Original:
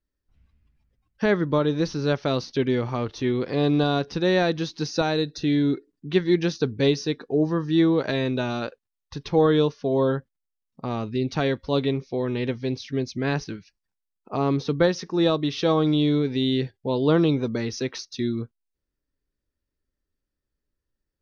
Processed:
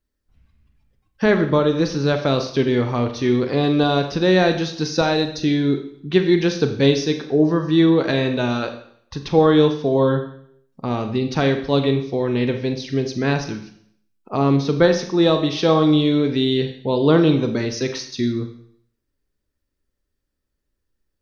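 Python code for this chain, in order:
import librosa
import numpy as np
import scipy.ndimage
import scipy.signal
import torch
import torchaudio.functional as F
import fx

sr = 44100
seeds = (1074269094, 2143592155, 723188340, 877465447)

y = fx.rev_schroeder(x, sr, rt60_s=0.64, comb_ms=29, drr_db=6.5)
y = F.gain(torch.from_numpy(y), 4.5).numpy()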